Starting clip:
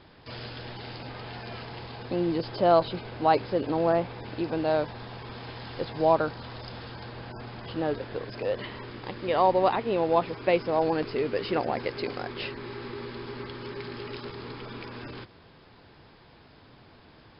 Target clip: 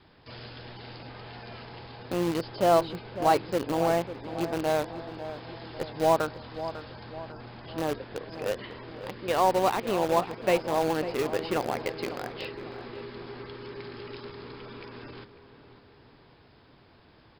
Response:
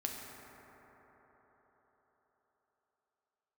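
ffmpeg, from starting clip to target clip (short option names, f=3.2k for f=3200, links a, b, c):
-filter_complex "[0:a]adynamicequalizer=threshold=0.0141:dfrequency=580:dqfactor=5.3:tfrequency=580:tqfactor=5.3:attack=5:release=100:ratio=0.375:range=2:mode=cutabove:tftype=bell,asplit=2[a][b];[b]acrusher=bits=3:mix=0:aa=0.000001,volume=-7dB[c];[a][c]amix=inputs=2:normalize=0,asplit=2[d][e];[e]adelay=548,lowpass=f=1.9k:p=1,volume=-11.5dB,asplit=2[f][g];[g]adelay=548,lowpass=f=1.9k:p=1,volume=0.52,asplit=2[h][i];[i]adelay=548,lowpass=f=1.9k:p=1,volume=0.52,asplit=2[j][k];[k]adelay=548,lowpass=f=1.9k:p=1,volume=0.52,asplit=2[l][m];[m]adelay=548,lowpass=f=1.9k:p=1,volume=0.52,asplit=2[n][o];[o]adelay=548,lowpass=f=1.9k:p=1,volume=0.52[p];[d][f][h][j][l][n][p]amix=inputs=7:normalize=0,volume=-4dB"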